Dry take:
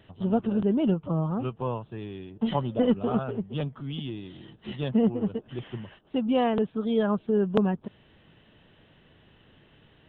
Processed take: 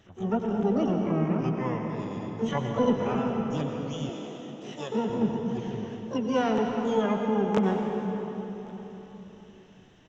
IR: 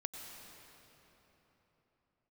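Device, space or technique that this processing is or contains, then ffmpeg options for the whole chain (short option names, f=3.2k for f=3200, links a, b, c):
shimmer-style reverb: -filter_complex "[0:a]asplit=2[a][b];[b]asetrate=88200,aresample=44100,atempo=0.5,volume=-7dB[c];[a][c]amix=inputs=2:normalize=0[d];[1:a]atrim=start_sample=2205[e];[d][e]afir=irnorm=-1:irlink=0,asettb=1/sr,asplit=3[f][g][h];[f]atrim=end=4.094[i];[g]atrim=start=4.09:end=5.1,asetpts=PTS-STARTPTS,afade=t=in:d=0.004:c=qsin,afade=t=out:st=1.006:d=0.004:c=qsin,highpass=260[j];[h]atrim=start=5.096[k];[i][j]acrossfade=d=0.004:c1=hsin:c2=qsin[l];[l][k]acrossfade=d=0.004:c1=qsin:c2=hsin,aecho=1:1:1122:0.0631"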